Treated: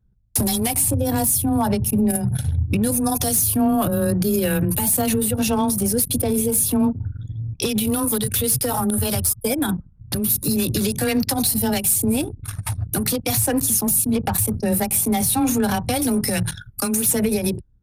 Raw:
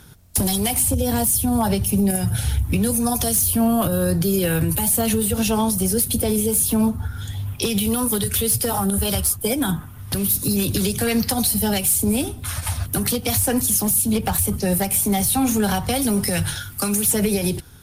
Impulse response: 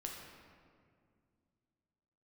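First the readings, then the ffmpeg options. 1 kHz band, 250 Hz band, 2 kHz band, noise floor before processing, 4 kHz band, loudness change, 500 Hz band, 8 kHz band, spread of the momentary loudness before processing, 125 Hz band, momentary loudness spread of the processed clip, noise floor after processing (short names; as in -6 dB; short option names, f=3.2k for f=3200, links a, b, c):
0.0 dB, 0.0 dB, -1.0 dB, -36 dBFS, -2.0 dB, 0.0 dB, 0.0 dB, -0.5 dB, 6 LU, -0.5 dB, 7 LU, -46 dBFS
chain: -af "bandreject=f=3.1k:w=15,afreqshift=15,anlmdn=398"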